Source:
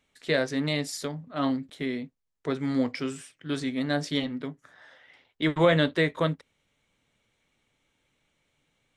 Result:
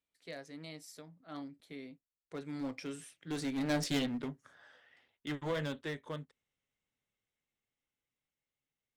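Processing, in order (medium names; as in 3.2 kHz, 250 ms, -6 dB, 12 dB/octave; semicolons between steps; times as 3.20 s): Doppler pass-by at 3.90 s, 19 m/s, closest 7.3 m; one-sided clip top -33.5 dBFS; treble shelf 7.3 kHz +5 dB; trim -1 dB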